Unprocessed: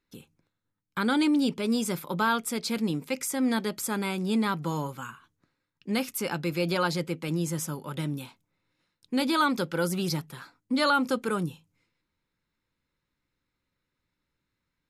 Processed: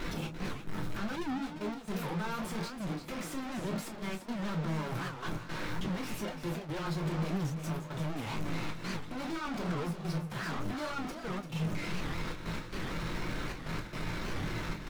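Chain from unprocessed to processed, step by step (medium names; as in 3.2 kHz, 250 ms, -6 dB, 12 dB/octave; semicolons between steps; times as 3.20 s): one-bit comparator; low-pass 1.7 kHz 6 dB/octave; waveshaping leveller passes 1; trance gate "xx.x.xxxx" 112 bpm -12 dB; delay 342 ms -9 dB; on a send at -1.5 dB: reverberation, pre-delay 3 ms; on the sum: warped record 78 rpm, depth 250 cents; trim -7.5 dB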